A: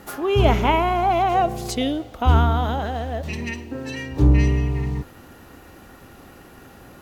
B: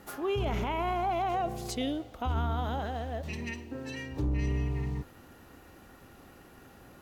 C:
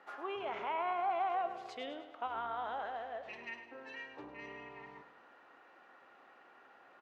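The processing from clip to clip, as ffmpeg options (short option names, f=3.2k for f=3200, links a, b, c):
-af "alimiter=limit=-14.5dB:level=0:latency=1:release=15,volume=-8.5dB"
-af "highpass=720,lowpass=2.1k,aecho=1:1:103|206|309|412|515:0.282|0.13|0.0596|0.0274|0.0126,volume=-1dB"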